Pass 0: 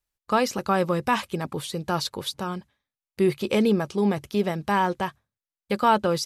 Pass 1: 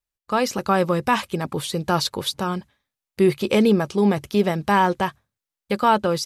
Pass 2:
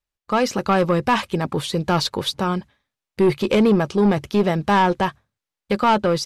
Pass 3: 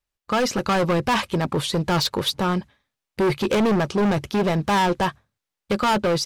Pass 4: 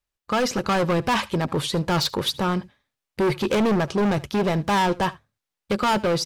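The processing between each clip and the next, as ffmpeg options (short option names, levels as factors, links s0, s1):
-af "dynaudnorm=f=240:g=3:m=3.35,volume=0.596"
-af "highshelf=f=8500:g=-12,aeval=exprs='(tanh(5.01*val(0)+0.15)-tanh(0.15))/5.01':c=same,volume=1.58"
-af "asoftclip=type=hard:threshold=0.119,volume=1.19"
-af "aecho=1:1:76:0.0841,volume=0.891"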